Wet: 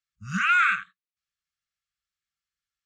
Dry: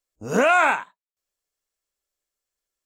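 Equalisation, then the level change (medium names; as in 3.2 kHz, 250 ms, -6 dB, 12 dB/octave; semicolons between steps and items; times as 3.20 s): high-pass 51 Hz; brick-wall FIR band-stop 210–1100 Hz; low-pass 4.6 kHz 12 dB/octave; 0.0 dB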